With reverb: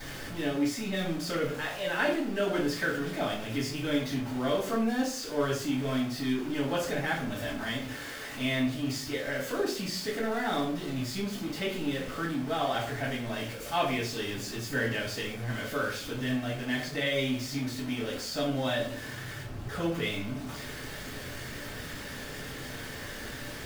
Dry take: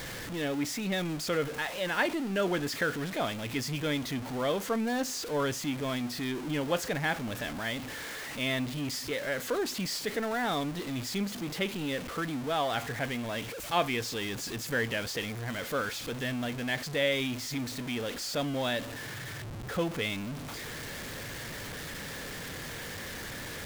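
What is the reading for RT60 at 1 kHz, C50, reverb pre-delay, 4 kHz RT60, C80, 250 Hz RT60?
0.45 s, 5.5 dB, 3 ms, 0.35 s, 9.5 dB, 0.70 s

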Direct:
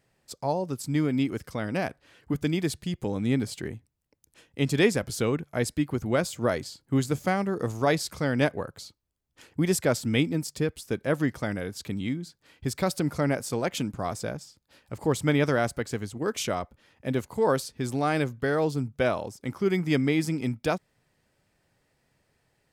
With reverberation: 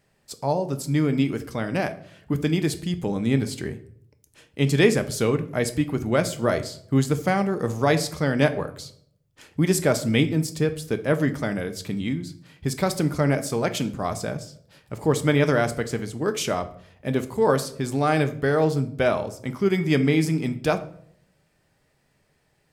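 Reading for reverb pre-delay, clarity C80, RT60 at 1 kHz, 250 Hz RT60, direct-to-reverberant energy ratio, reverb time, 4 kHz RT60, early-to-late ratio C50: 5 ms, 18.5 dB, 0.55 s, 0.80 s, 8.0 dB, 0.65 s, 0.40 s, 14.5 dB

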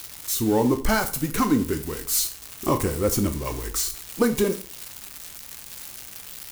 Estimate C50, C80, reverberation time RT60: 13.5 dB, 18.0 dB, 0.40 s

